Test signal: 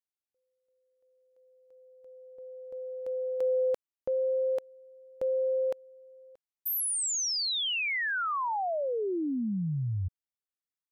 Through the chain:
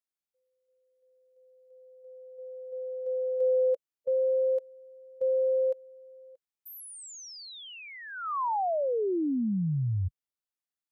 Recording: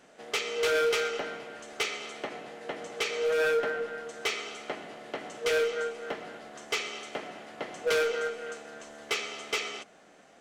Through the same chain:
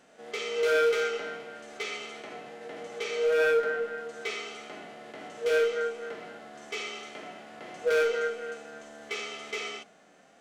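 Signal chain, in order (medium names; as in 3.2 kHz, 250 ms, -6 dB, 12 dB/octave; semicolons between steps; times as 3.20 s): harmonic-percussive split percussive -17 dB; trim +2.5 dB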